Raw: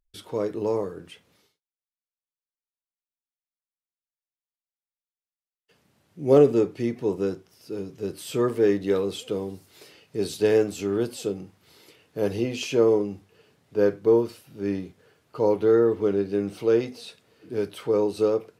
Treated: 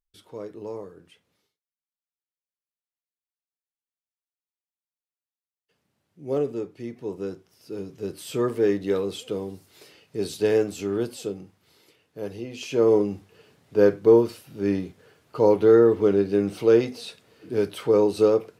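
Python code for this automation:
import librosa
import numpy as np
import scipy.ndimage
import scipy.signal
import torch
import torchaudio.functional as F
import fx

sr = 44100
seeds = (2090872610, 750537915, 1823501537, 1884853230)

y = fx.gain(x, sr, db=fx.line((6.73, -9.5), (7.81, -1.0), (11.01, -1.0), (12.45, -9.0), (12.99, 3.5)))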